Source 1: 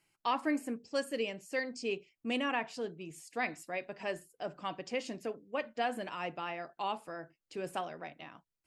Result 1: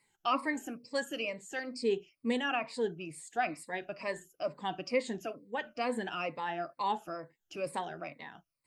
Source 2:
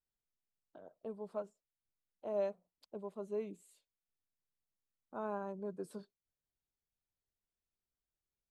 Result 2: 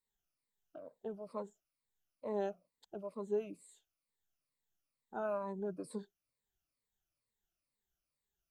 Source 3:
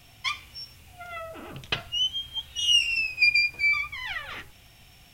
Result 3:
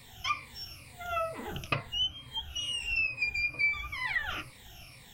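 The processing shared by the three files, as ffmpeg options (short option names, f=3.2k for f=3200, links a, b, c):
-filter_complex "[0:a]afftfilt=real='re*pow(10,15/40*sin(2*PI*(0.97*log(max(b,1)*sr/1024/100)/log(2)-(-2.2)*(pts-256)/sr)))':imag='im*pow(10,15/40*sin(2*PI*(0.97*log(max(b,1)*sr/1024/100)/log(2)-(-2.2)*(pts-256)/sr)))':win_size=1024:overlap=0.75,acrossover=split=2000[a][b];[b]acompressor=threshold=-38dB:ratio=6[c];[a][c]amix=inputs=2:normalize=0"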